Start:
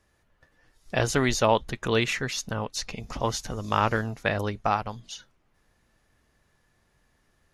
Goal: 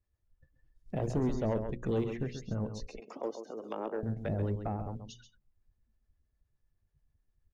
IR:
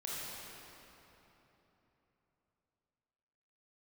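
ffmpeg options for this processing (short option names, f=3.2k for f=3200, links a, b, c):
-filter_complex "[0:a]asettb=1/sr,asplit=3[a][b][c];[a]atrim=end=2.864[d];[b]atrim=start=2.86:end=4.03,asetpts=PTS-STARTPTS,afade=t=in:d=0.004:c=qsin,afade=t=out:st=1.166:d=0.004:c=qsin,highpass=f=320:w=0.5412,highpass=f=320:w=1.3066[e];[c]atrim=start=4.026[f];[d][e]acrossfade=d=0.004:c1=hsin:c2=qsin[g];[g][f]acrossfade=d=0.004:c1=qsin:c2=hsin,acrossover=split=520[h][i];[h]aeval=exprs='0.178*sin(PI/2*1.58*val(0)/0.178)':c=same[j];[i]acompressor=threshold=-41dB:ratio=6[k];[j][k]amix=inputs=2:normalize=0,acrossover=split=530[l][m];[l]aeval=exprs='val(0)*(1-0.5/2+0.5/2*cos(2*PI*9.5*n/s))':c=same[n];[m]aeval=exprs='val(0)*(1-0.5/2-0.5/2*cos(2*PI*9.5*n/s))':c=same[o];[n][o]amix=inputs=2:normalize=0,acrusher=bits=7:mode=log:mix=0:aa=0.000001,bandreject=f=60:t=h:w=6,bandreject=f=120:t=h:w=6,bandreject=f=180:t=h:w=6,bandreject=f=240:t=h:w=6,bandreject=f=300:t=h:w=6,bandreject=f=360:t=h:w=6,bandreject=f=420:t=h:w=6,bandreject=f=480:t=h:w=6,bandreject=f=540:t=h:w=6,afftdn=nr=19:nf=-49,asplit=2[p][q];[q]aecho=0:1:134:0.335[r];[p][r]amix=inputs=2:normalize=0,asoftclip=type=tanh:threshold=-18dB,adynamicequalizer=threshold=0.00158:dfrequency=6300:dqfactor=0.7:tfrequency=6300:tqfactor=0.7:attack=5:release=100:ratio=0.375:range=2:mode=cutabove:tftype=highshelf,volume=-5dB"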